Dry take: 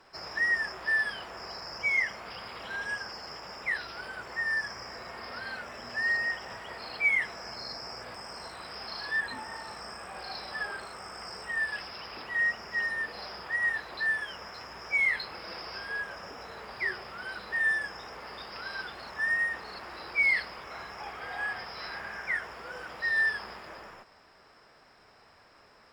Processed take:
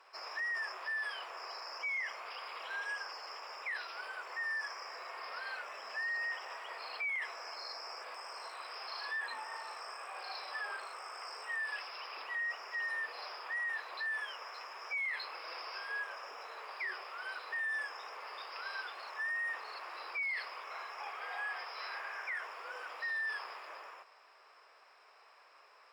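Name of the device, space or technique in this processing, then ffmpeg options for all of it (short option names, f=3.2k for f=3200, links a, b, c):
laptop speaker: -af "highpass=f=440:w=0.5412,highpass=f=440:w=1.3066,equalizer=f=1.1k:t=o:w=0.46:g=6.5,equalizer=f=2.5k:t=o:w=0.42:g=6.5,alimiter=level_in=2dB:limit=-24dB:level=0:latency=1:release=13,volume=-2dB,volume=-5.5dB"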